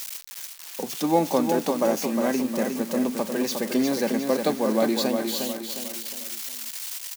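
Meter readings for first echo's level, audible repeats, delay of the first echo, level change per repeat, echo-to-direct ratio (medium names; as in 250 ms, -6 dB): -5.5 dB, 4, 358 ms, -7.5 dB, -4.5 dB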